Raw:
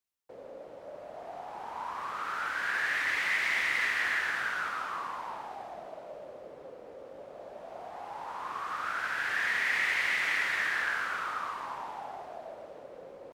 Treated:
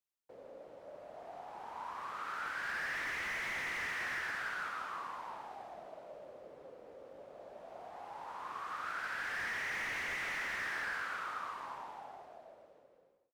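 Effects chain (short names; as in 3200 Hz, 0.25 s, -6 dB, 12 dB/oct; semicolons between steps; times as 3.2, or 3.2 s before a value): ending faded out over 1.65 s; slew limiter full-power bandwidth 59 Hz; gain -6 dB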